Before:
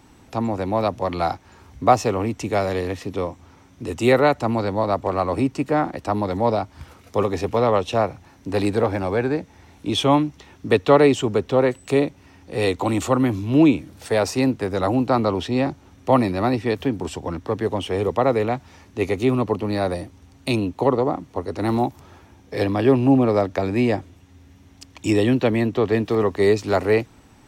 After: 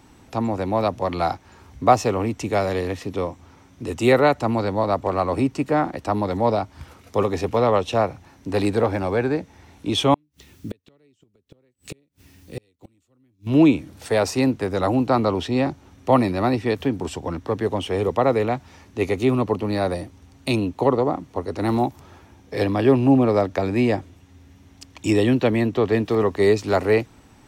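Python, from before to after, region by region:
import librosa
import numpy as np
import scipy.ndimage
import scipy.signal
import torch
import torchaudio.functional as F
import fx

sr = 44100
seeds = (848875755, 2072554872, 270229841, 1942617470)

y = fx.chain(x, sr, fx.peak_eq(hz=910.0, db=-14.5, octaves=1.8),
    fx.quant_dither(seeds[0], bits=10, dither='triangular'),
    fx.gate_flip(shuts_db=-20.0, range_db=-39), at=(10.14, 13.47))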